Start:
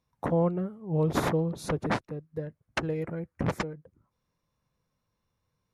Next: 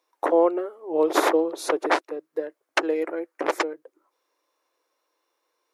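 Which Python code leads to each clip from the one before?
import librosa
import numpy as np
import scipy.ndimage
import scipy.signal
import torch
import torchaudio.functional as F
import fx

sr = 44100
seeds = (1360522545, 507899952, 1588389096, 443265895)

y = scipy.signal.sosfilt(scipy.signal.ellip(4, 1.0, 40, 320.0, 'highpass', fs=sr, output='sos'), x)
y = F.gain(torch.from_numpy(y), 9.0).numpy()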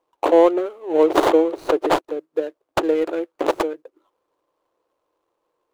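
y = scipy.ndimage.median_filter(x, 25, mode='constant')
y = F.gain(torch.from_numpy(y), 6.0).numpy()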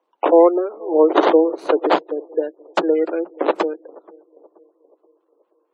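y = scipy.signal.sosfilt(scipy.signal.butter(16, 170.0, 'highpass', fs=sr, output='sos'), x)
y = fx.echo_banded(y, sr, ms=478, feedback_pct=49, hz=430.0, wet_db=-23.0)
y = fx.spec_gate(y, sr, threshold_db=-30, keep='strong')
y = F.gain(torch.from_numpy(y), 2.0).numpy()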